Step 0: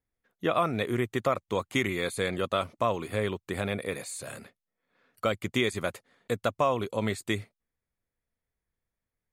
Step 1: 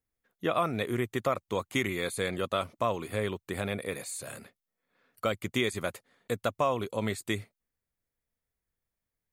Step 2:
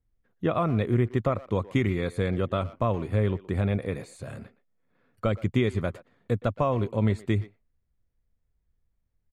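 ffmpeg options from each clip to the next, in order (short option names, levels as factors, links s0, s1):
-af "highshelf=f=11000:g=7.5,volume=0.794"
-filter_complex "[0:a]aemphasis=mode=reproduction:type=riaa,asplit=2[s0][s1];[s1]adelay=120,highpass=300,lowpass=3400,asoftclip=type=hard:threshold=0.0794,volume=0.141[s2];[s0][s2]amix=inputs=2:normalize=0"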